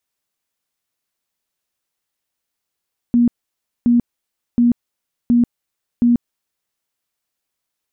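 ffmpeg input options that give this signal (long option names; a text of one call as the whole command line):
ffmpeg -f lavfi -i "aevalsrc='0.335*sin(2*PI*239*mod(t,0.72))*lt(mod(t,0.72),33/239)':duration=3.6:sample_rate=44100" out.wav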